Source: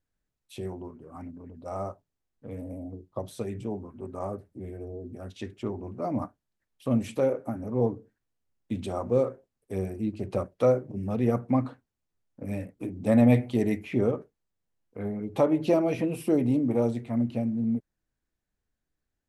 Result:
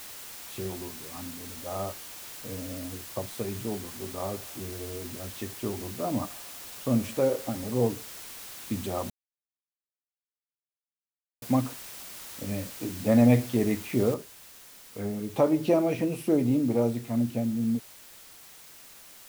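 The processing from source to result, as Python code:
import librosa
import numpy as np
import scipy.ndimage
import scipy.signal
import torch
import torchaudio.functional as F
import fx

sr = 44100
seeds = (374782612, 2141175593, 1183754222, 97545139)

y = fx.echo_banded(x, sr, ms=82, feedback_pct=85, hz=950.0, wet_db=-20.0, at=(3.74, 7.74), fade=0.02)
y = fx.noise_floor_step(y, sr, seeds[0], at_s=14.14, before_db=-43, after_db=-50, tilt_db=0.0)
y = fx.edit(y, sr, fx.silence(start_s=9.1, length_s=2.32), tone=tone)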